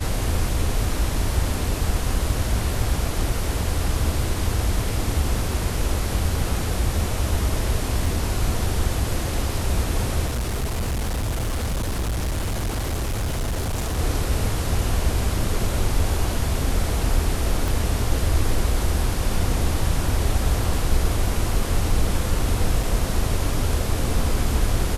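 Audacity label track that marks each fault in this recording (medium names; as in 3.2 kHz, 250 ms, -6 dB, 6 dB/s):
8.060000	8.060000	dropout 2.9 ms
10.260000	13.990000	clipped -21 dBFS
17.680000	17.680000	pop
22.830000	22.830000	dropout 2.8 ms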